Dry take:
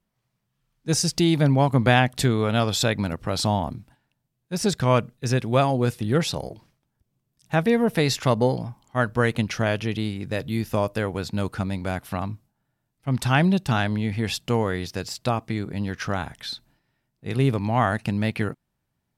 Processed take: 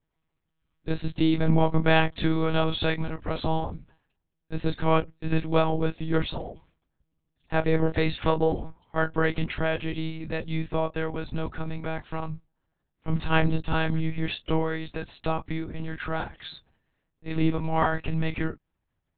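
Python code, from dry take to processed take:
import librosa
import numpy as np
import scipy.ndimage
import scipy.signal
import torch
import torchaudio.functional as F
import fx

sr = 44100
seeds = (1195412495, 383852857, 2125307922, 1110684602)

y = fx.chorus_voices(x, sr, voices=2, hz=0.19, base_ms=26, depth_ms=3.8, mix_pct=25)
y = fx.lpc_monotone(y, sr, seeds[0], pitch_hz=160.0, order=10)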